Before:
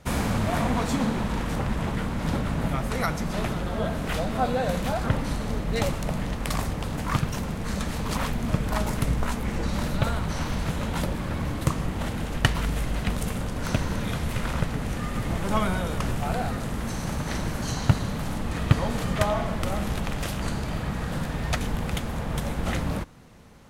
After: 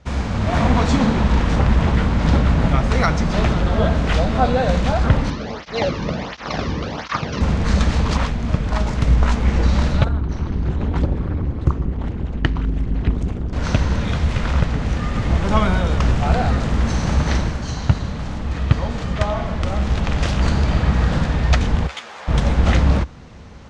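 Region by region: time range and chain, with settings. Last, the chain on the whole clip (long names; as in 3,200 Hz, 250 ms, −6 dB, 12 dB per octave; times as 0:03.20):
0:05.30–0:07.41: variable-slope delta modulation 32 kbit/s + through-zero flanger with one copy inverted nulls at 1.4 Hz, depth 1.6 ms
0:10.04–0:13.53: spectral envelope exaggerated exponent 1.5 + amplitude modulation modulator 210 Hz, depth 75%
0:21.87–0:22.28: high-pass filter 810 Hz + string-ensemble chorus
whole clip: low-pass filter 6,500 Hz 24 dB per octave; parametric band 66 Hz +9.5 dB 0.76 octaves; automatic gain control gain up to 11 dB; level −1 dB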